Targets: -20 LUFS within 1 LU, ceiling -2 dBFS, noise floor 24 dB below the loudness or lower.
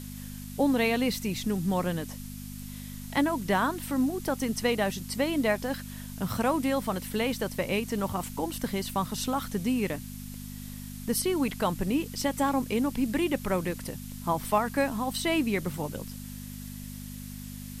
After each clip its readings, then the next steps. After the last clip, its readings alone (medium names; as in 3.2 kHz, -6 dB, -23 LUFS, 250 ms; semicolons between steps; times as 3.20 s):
hum 50 Hz; highest harmonic 250 Hz; hum level -38 dBFS; noise floor -41 dBFS; noise floor target -53 dBFS; loudness -29.0 LUFS; peak level -12.0 dBFS; loudness target -20.0 LUFS
-> de-hum 50 Hz, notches 5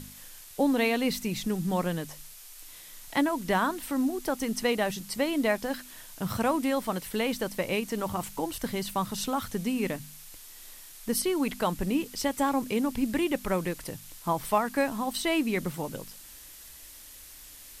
hum not found; noise floor -48 dBFS; noise floor target -54 dBFS
-> noise print and reduce 6 dB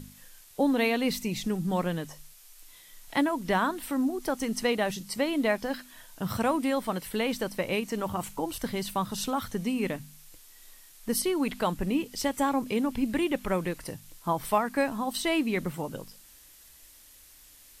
noise floor -54 dBFS; loudness -29.5 LUFS; peak level -12.0 dBFS; loudness target -20.0 LUFS
-> trim +9.5 dB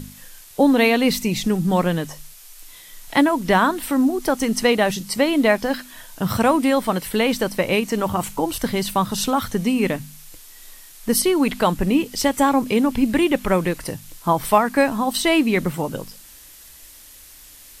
loudness -20.0 LUFS; peak level -2.5 dBFS; noise floor -45 dBFS